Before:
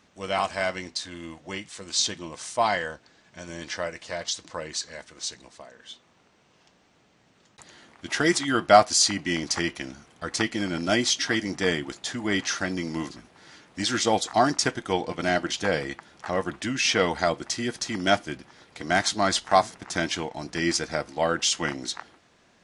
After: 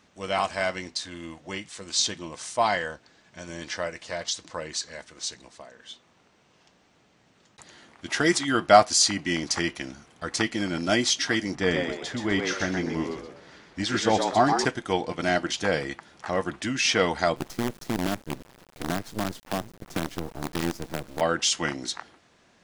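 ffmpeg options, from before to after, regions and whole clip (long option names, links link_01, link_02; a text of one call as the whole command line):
ffmpeg -i in.wav -filter_complex "[0:a]asettb=1/sr,asplit=3[link_01][link_02][link_03];[link_01]atrim=end=11.554[link_04];[link_02]atrim=start=11.55:end=14.65,asetpts=PTS-STARTPTS,afade=type=in:duration=0.004:curve=qsin,afade=type=out:start_time=3.096:duration=0.004:curve=qsin,lowpass=frequency=3400:poles=1,lowshelf=frequency=64:gain=10,asplit=5[link_05][link_06][link_07][link_08][link_09];[link_06]adelay=125,afreqshift=84,volume=-5dB[link_10];[link_07]adelay=250,afreqshift=168,volume=-14.4dB[link_11];[link_08]adelay=375,afreqshift=252,volume=-23.7dB[link_12];[link_09]adelay=500,afreqshift=336,volume=-33.1dB[link_13];[link_05][link_10][link_11][link_12][link_13]amix=inputs=5:normalize=0,atrim=end_sample=136710[link_14];[link_03]atrim=start=14.646[link_15];[link_04][link_14]acrossfade=duration=0.004:curve1=hsin:curve2=qsin[link_16];[link_16][link_15]acrossfade=duration=0.004:curve1=qsin:curve2=hsin,asettb=1/sr,asplit=3[link_17][link_18][link_19];[link_17]atrim=end=17.364[link_20];[link_18]atrim=start=17.36:end=21.21,asetpts=PTS-STARTPTS,afade=type=in:duration=0.004:curve=qsin,afade=type=out:start_time=3.846:duration=0.004:curve=qsin,tiltshelf=frequency=770:gain=8.5,acrossover=split=110|300[link_21][link_22][link_23];[link_21]acompressor=threshold=-49dB:ratio=4[link_24];[link_22]acompressor=threshold=-30dB:ratio=4[link_25];[link_23]acompressor=threshold=-34dB:ratio=4[link_26];[link_24][link_25][link_26]amix=inputs=3:normalize=0,acrusher=bits=5:dc=4:mix=0:aa=0.000001[link_27];[link_19]atrim=start=21.206[link_28];[link_20][link_27]acrossfade=duration=0.004:curve1=hsin:curve2=qsin[link_29];[link_29][link_28]acrossfade=duration=0.004:curve1=qsin:curve2=hsin" out.wav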